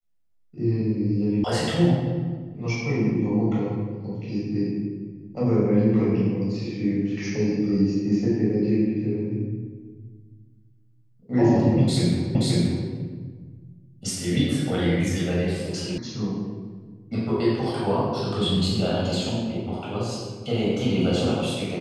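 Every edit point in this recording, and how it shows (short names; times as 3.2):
1.44 sound cut off
12.35 repeat of the last 0.53 s
15.98 sound cut off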